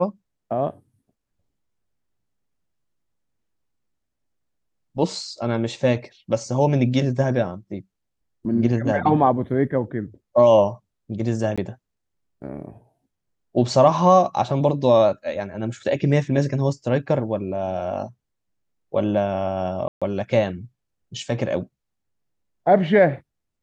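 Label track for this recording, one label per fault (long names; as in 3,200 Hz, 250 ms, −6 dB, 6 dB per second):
11.560000	11.580000	drop-out 16 ms
19.880000	20.020000	drop-out 136 ms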